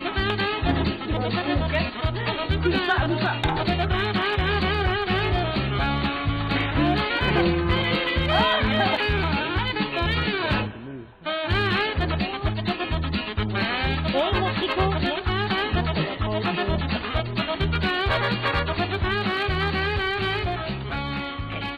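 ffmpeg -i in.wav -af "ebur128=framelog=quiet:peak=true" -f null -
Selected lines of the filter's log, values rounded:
Integrated loudness:
  I:         -23.9 LUFS
  Threshold: -33.9 LUFS
Loudness range:
  LRA:         3.0 LU
  Threshold: -43.8 LUFS
  LRA low:   -25.0 LUFS
  LRA high:  -22.0 LUFS
True peak:
  Peak:       -9.5 dBFS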